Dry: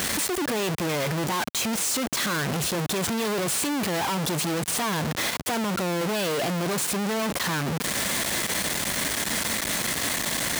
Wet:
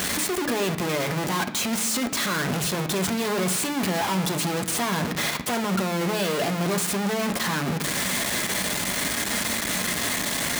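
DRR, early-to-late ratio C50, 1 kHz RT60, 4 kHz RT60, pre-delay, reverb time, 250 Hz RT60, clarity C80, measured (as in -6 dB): 5.0 dB, 12.5 dB, 0.70 s, 0.95 s, 5 ms, 0.70 s, 0.90 s, 15.0 dB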